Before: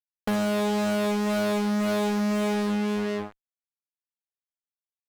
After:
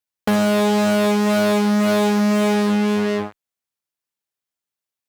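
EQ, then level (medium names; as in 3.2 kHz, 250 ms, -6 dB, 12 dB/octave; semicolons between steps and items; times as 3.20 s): high-pass 52 Hz; +8.0 dB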